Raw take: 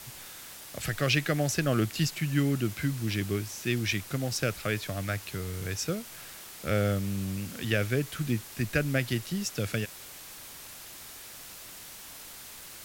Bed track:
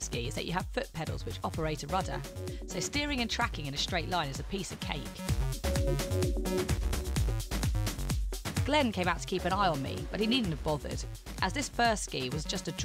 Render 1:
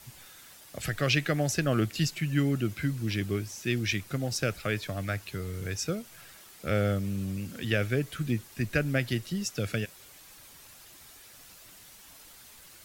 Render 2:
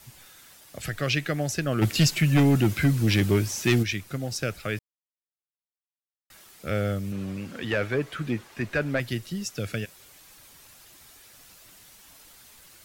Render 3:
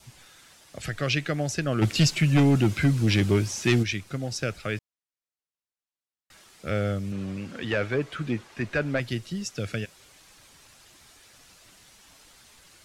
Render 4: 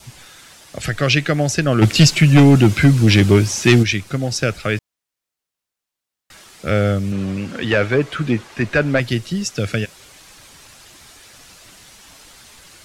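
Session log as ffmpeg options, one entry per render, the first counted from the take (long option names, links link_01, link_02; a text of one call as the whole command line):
ffmpeg -i in.wav -af "afftdn=noise_reduction=8:noise_floor=-46" out.wav
ffmpeg -i in.wav -filter_complex "[0:a]asplit=3[link_01][link_02][link_03];[link_01]afade=type=out:start_time=1.81:duration=0.02[link_04];[link_02]aeval=exprs='0.2*sin(PI/2*2*val(0)/0.2)':channel_layout=same,afade=type=in:start_time=1.81:duration=0.02,afade=type=out:start_time=3.82:duration=0.02[link_05];[link_03]afade=type=in:start_time=3.82:duration=0.02[link_06];[link_04][link_05][link_06]amix=inputs=3:normalize=0,asettb=1/sr,asplit=3[link_07][link_08][link_09];[link_07]atrim=end=7.124[link_10];[link_08]atrim=start=7.12:end=9,asetpts=PTS-STARTPTS,afade=type=in:duration=0.004:curve=qsin,afade=type=out:start_time=1.876:duration=0.004:curve=qsin,asplit=2[link_11][link_12];[link_12]highpass=frequency=720:poles=1,volume=17dB,asoftclip=type=tanh:threshold=-12.5dB[link_13];[link_11][link_13]amix=inputs=2:normalize=0,lowpass=frequency=1200:poles=1,volume=-6dB[link_14];[link_09]atrim=start=8.996[link_15];[link_10][link_14]acrossfade=duration=0.004:curve1=hsin:curve2=qsin[link_16];[link_16][link_15]acrossfade=duration=0.004:curve1=qsin:curve2=hsin,asplit=3[link_17][link_18][link_19];[link_17]atrim=end=4.79,asetpts=PTS-STARTPTS,afade=type=out:start_time=4.786:duration=0.004:curve=hsin[link_20];[link_18]atrim=start=4.79:end=6.3,asetpts=PTS-STARTPTS,volume=0[link_21];[link_19]atrim=start=6.3,asetpts=PTS-STARTPTS,afade=type=in:duration=0.004:curve=hsin[link_22];[link_20][link_21][link_22]concat=n=3:v=0:a=1" out.wav
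ffmpeg -i in.wav -af "lowpass=8700,adynamicequalizer=threshold=0.00355:dfrequency=1800:dqfactor=6.5:tfrequency=1800:tqfactor=6.5:attack=5:release=100:ratio=0.375:range=2:mode=cutabove:tftype=bell" out.wav
ffmpeg -i in.wav -af "volume=10dB" out.wav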